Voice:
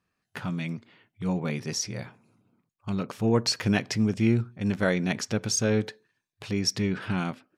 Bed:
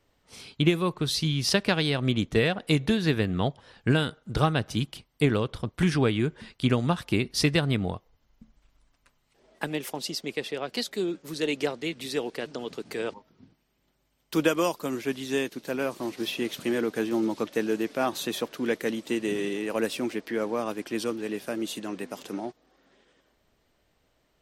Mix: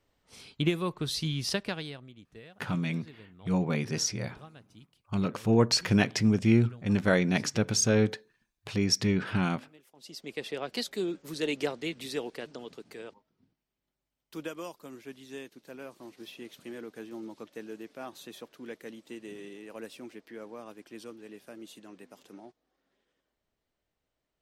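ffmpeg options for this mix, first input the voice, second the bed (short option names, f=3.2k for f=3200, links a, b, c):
-filter_complex "[0:a]adelay=2250,volume=0.5dB[a];[1:a]volume=18.5dB,afade=t=out:st=1.37:d=0.71:silence=0.0841395,afade=t=in:st=9.95:d=0.59:silence=0.0668344,afade=t=out:st=11.89:d=1.28:silence=0.251189[b];[a][b]amix=inputs=2:normalize=0"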